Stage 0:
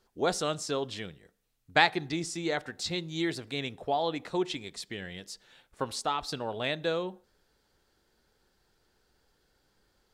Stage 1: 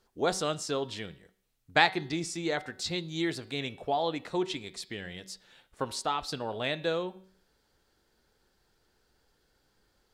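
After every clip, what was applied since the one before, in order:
hum removal 188.5 Hz, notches 27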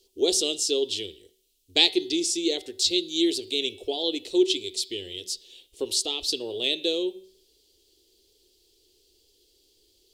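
drawn EQ curve 100 Hz 0 dB, 140 Hz −22 dB, 380 Hz +12 dB, 610 Hz −6 dB, 1,500 Hz −23 dB, 3,000 Hz +12 dB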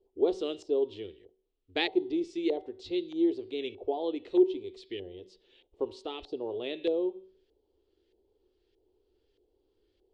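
auto-filter low-pass saw up 1.6 Hz 740–1,800 Hz
level −3.5 dB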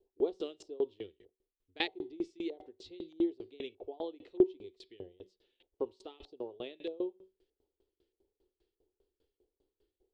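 tremolo with a ramp in dB decaying 5 Hz, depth 26 dB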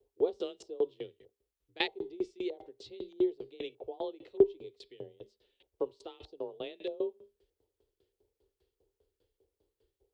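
frequency shifter +26 Hz
level +2 dB

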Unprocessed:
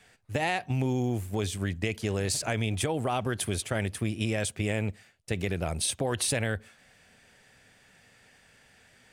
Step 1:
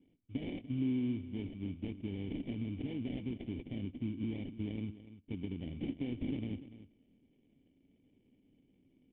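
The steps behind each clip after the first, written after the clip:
sample-rate reduction 1,300 Hz, jitter 20%
formant resonators in series i
single-tap delay 292 ms −14.5 dB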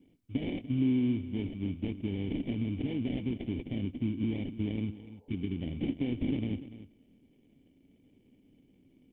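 healed spectral selection 0:04.95–0:05.59, 430–1,000 Hz before
level +6 dB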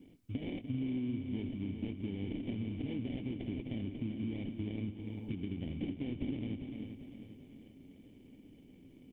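downward compressor 3 to 1, threshold −45 dBFS, peak gain reduction 15 dB
on a send: repeating echo 395 ms, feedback 50%, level −8.5 dB
on the sum: level +5.5 dB

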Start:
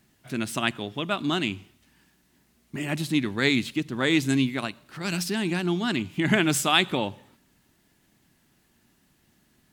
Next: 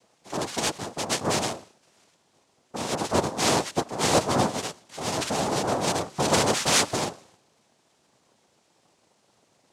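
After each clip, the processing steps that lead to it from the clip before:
cochlear-implant simulation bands 2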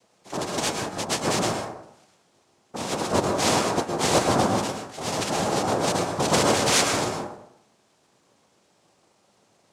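dense smooth reverb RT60 0.74 s, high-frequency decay 0.35×, pre-delay 100 ms, DRR 2.5 dB

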